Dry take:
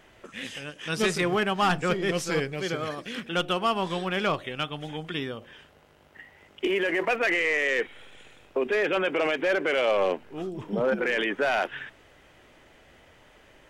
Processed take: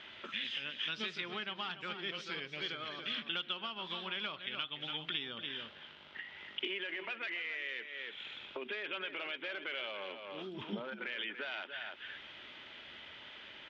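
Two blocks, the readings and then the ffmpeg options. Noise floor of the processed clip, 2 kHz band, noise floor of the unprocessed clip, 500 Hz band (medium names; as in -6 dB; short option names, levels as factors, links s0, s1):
-54 dBFS, -11.5 dB, -57 dBFS, -20.0 dB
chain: -filter_complex "[0:a]equalizer=f=200:t=o:w=2.7:g=-15,asplit=2[s0][s1];[s1]adelay=285.7,volume=0.282,highshelf=f=4000:g=-6.43[s2];[s0][s2]amix=inputs=2:normalize=0,acompressor=threshold=0.00501:ratio=6,highpass=140,equalizer=f=220:t=q:w=4:g=7,equalizer=f=490:t=q:w=4:g=-8,equalizer=f=730:t=q:w=4:g=-9,equalizer=f=1100:t=q:w=4:g=-5,equalizer=f=1800:t=q:w=4:g=-4,equalizer=f=3400:t=q:w=4:g=7,lowpass=f=4000:w=0.5412,lowpass=f=4000:w=1.3066,volume=2.66"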